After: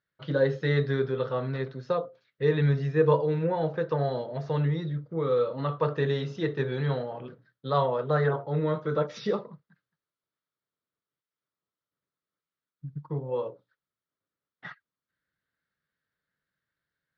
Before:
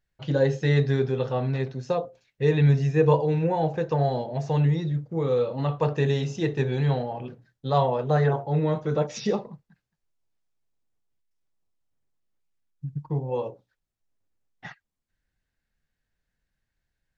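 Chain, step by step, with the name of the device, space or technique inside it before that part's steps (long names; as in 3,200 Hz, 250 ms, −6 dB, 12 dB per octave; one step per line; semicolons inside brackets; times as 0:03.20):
kitchen radio (loudspeaker in its box 170–4,300 Hz, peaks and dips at 230 Hz −6 dB, 350 Hz −3 dB, 780 Hz −10 dB, 1,300 Hz +7 dB, 2,600 Hz −8 dB)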